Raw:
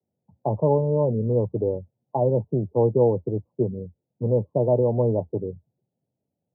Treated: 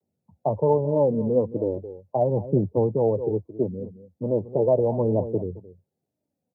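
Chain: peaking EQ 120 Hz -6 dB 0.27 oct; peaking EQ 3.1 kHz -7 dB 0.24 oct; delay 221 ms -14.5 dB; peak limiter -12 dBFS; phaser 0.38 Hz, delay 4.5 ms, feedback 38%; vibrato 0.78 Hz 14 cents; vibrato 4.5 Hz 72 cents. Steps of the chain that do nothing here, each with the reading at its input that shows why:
peaking EQ 3.1 kHz: input has nothing above 960 Hz

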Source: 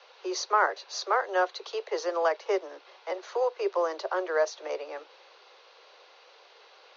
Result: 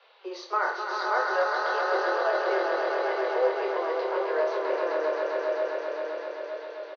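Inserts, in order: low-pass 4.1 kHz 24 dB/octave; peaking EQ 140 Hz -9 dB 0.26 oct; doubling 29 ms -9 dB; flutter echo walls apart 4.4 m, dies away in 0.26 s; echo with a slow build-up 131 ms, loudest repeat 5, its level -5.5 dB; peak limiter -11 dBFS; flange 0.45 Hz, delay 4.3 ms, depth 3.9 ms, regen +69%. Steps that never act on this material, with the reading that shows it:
peaking EQ 140 Hz: input has nothing below 290 Hz

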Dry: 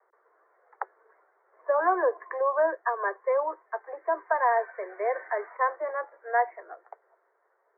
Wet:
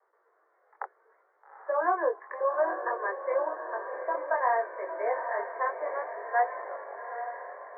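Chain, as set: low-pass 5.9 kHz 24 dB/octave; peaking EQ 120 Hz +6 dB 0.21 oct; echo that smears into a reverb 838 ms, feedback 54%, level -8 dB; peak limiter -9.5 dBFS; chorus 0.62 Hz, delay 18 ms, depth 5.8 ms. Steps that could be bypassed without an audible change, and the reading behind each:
low-pass 5.9 kHz: input has nothing above 2.2 kHz; peaking EQ 120 Hz: input has nothing below 300 Hz; peak limiter -9.5 dBFS: peak at its input -11.5 dBFS

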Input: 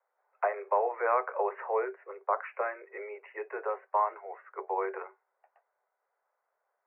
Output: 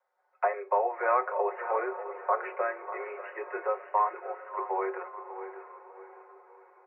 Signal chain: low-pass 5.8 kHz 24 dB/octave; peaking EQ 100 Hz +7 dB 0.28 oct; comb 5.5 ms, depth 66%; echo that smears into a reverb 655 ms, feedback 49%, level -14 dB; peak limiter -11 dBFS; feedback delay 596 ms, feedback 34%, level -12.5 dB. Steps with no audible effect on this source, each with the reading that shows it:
low-pass 5.8 kHz: input has nothing above 2.6 kHz; peaking EQ 100 Hz: input has nothing below 320 Hz; peak limiter -11 dBFS: peak at its input -13.0 dBFS

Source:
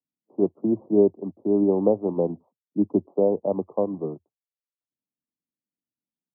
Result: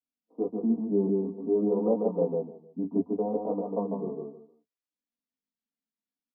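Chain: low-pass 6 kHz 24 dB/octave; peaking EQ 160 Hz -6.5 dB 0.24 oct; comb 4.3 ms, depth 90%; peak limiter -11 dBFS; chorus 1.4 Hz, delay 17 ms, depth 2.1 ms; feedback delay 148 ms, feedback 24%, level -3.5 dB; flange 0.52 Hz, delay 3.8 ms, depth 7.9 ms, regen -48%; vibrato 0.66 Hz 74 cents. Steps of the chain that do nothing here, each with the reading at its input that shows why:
low-pass 6 kHz: input has nothing above 1 kHz

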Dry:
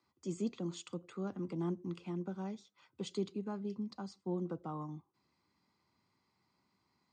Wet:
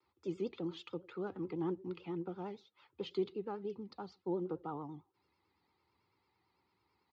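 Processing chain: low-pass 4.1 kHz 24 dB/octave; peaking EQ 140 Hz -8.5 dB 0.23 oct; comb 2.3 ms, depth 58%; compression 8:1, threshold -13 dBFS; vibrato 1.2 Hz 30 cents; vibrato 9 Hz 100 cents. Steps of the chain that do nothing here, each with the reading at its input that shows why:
compression, threshold -13 dBFS: peak at its input -24.5 dBFS

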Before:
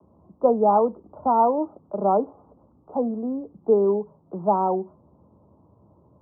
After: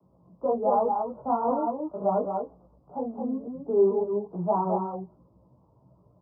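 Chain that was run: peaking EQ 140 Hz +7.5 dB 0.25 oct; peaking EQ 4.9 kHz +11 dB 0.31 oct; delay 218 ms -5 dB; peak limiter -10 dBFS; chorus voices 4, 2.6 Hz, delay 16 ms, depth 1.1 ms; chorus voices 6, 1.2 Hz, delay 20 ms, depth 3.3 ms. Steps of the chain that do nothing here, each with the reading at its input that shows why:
peaking EQ 4.9 kHz: input has nothing above 1.4 kHz

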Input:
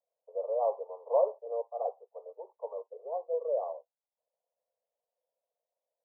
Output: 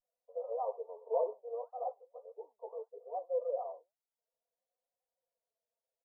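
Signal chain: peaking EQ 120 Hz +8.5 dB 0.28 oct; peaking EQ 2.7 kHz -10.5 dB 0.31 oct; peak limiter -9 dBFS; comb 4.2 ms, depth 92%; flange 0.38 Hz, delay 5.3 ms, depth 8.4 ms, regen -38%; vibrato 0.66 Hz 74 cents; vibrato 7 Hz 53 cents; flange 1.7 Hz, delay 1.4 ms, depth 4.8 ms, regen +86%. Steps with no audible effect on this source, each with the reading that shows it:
peaking EQ 120 Hz: input has nothing below 360 Hz; peaking EQ 2.7 kHz: input has nothing above 1.1 kHz; peak limiter -9 dBFS: peak at its input -15.5 dBFS

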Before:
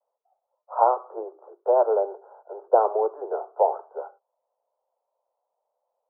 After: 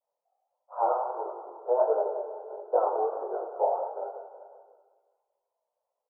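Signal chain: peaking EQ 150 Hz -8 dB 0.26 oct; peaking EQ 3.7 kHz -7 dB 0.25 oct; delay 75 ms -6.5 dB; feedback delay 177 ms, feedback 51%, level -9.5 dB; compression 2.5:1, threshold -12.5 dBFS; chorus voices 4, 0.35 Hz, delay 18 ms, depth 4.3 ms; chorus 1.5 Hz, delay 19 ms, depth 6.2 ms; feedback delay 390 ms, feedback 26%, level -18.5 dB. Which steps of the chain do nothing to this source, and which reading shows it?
peaking EQ 150 Hz: input has nothing below 320 Hz; peaking EQ 3.7 kHz: input has nothing above 1.4 kHz

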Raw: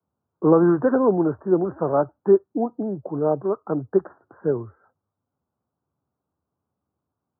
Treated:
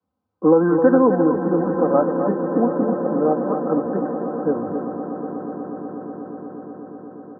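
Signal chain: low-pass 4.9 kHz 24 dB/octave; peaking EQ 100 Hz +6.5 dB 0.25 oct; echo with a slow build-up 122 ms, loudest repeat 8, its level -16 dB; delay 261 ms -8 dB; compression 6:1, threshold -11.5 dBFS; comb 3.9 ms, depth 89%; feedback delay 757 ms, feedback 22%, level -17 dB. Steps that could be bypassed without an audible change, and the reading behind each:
low-pass 4.9 kHz: input has nothing above 1.3 kHz

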